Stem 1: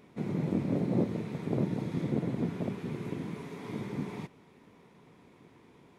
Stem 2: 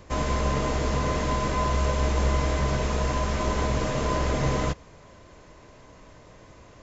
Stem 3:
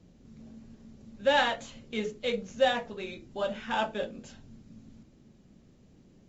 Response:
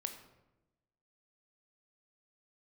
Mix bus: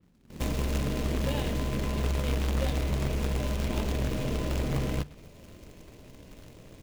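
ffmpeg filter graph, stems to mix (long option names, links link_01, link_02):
-filter_complex "[0:a]adelay=150,volume=-13dB[link_01];[1:a]bandreject=frequency=50:width_type=h:width=6,bandreject=frequency=100:width_type=h:width=6,bandreject=frequency=150:width_type=h:width=6,acompressor=threshold=-28dB:ratio=3,adelay=300,volume=2.5dB[link_02];[2:a]volume=-6.5dB[link_03];[link_01][link_02][link_03]amix=inputs=3:normalize=0,firequalizer=gain_entry='entry(260,0);entry(1300,-20);entry(2500,-3);entry(5100,-8)':delay=0.05:min_phase=1,acrusher=bits=2:mode=log:mix=0:aa=0.000001,adynamicequalizer=threshold=0.00224:dfrequency=4000:dqfactor=0.7:tfrequency=4000:tqfactor=0.7:attack=5:release=100:ratio=0.375:range=2:mode=cutabove:tftype=highshelf"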